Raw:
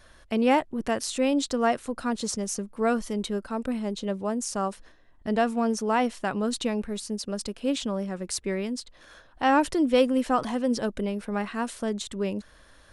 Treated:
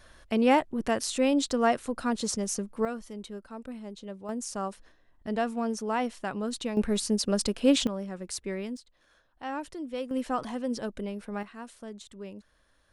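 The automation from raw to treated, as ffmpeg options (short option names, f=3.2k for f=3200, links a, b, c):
-af "asetnsamples=n=441:p=0,asendcmd='2.85 volume volume -11dB;4.29 volume volume -5dB;6.77 volume volume 5dB;7.87 volume volume -5dB;8.77 volume volume -14dB;10.11 volume volume -6dB;11.43 volume volume -13dB',volume=-0.5dB"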